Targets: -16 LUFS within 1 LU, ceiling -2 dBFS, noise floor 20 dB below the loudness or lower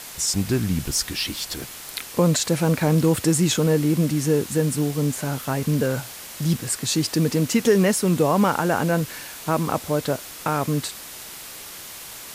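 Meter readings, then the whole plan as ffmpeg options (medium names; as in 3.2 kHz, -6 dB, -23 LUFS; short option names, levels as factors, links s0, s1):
noise floor -38 dBFS; noise floor target -43 dBFS; loudness -22.5 LUFS; peak level -6.5 dBFS; loudness target -16.0 LUFS
-> -af "afftdn=nr=6:nf=-38"
-af "volume=2.11,alimiter=limit=0.794:level=0:latency=1"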